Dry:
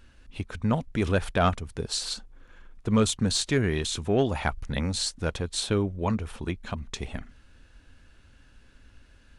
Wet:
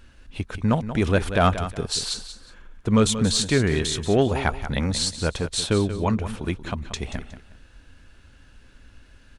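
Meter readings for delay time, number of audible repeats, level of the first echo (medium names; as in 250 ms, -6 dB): 182 ms, 2, -11.5 dB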